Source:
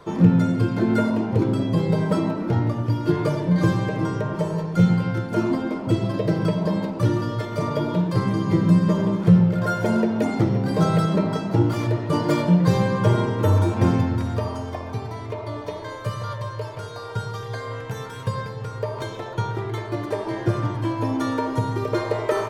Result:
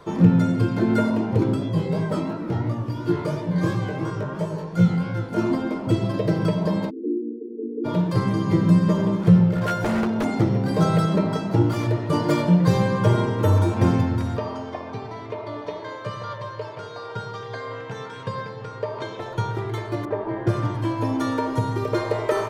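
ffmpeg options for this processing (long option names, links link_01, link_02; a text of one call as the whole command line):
ffmpeg -i in.wav -filter_complex "[0:a]asplit=3[link_01][link_02][link_03];[link_01]afade=type=out:start_time=1.55:duration=0.02[link_04];[link_02]flanger=delay=17:depth=5.9:speed=2.9,afade=type=in:start_time=1.55:duration=0.02,afade=type=out:start_time=5.37:duration=0.02[link_05];[link_03]afade=type=in:start_time=5.37:duration=0.02[link_06];[link_04][link_05][link_06]amix=inputs=3:normalize=0,asplit=3[link_07][link_08][link_09];[link_07]afade=type=out:start_time=6.89:duration=0.02[link_10];[link_08]asuperpass=centerf=320:order=20:qfactor=1.3,afade=type=in:start_time=6.89:duration=0.02,afade=type=out:start_time=7.84:duration=0.02[link_11];[link_09]afade=type=in:start_time=7.84:duration=0.02[link_12];[link_10][link_11][link_12]amix=inputs=3:normalize=0,asettb=1/sr,asplit=3[link_13][link_14][link_15];[link_13]atrim=end=9.544[link_16];[link_14]atrim=start=9.54:end=10.25,asetpts=PTS-STARTPTS,afade=type=in:duration=0.004:curve=qsin,afade=type=out:start_time=0.706:duration=0.004:curve=qsin,aeval=exprs='0.141*(abs(mod(val(0)/0.141+3,4)-2)-1)':channel_layout=same[link_17];[link_15]atrim=start=10.246[link_18];[link_16][link_17]acrossfade=duration=0.004:curve1=hsin:curve2=qsin[link_19];[link_19][link_18]acrossfade=duration=0.004:curve1=qsin:curve2=hsin,asplit=3[link_20][link_21][link_22];[link_20]afade=type=out:start_time=14.36:duration=0.02[link_23];[link_21]highpass=160,lowpass=4800,afade=type=in:start_time=14.36:duration=0.02,afade=type=out:start_time=19.19:duration=0.02[link_24];[link_22]afade=type=in:start_time=19.19:duration=0.02[link_25];[link_23][link_24][link_25]amix=inputs=3:normalize=0,asettb=1/sr,asplit=3[link_26][link_27][link_28];[link_26]atrim=end=20.054[link_29];[link_27]atrim=start=20.05:end=20.47,asetpts=PTS-STARTPTS,afade=type=in:duration=0.004:curve=qsin,afade=type=out:start_time=0.416:duration=0.004:curve=qsin,lowpass=1700[link_30];[link_28]atrim=start=20.466[link_31];[link_29][link_30]acrossfade=duration=0.004:curve1=hsin:curve2=qsin[link_32];[link_32][link_31]acrossfade=duration=0.004:curve1=qsin:curve2=hsin" out.wav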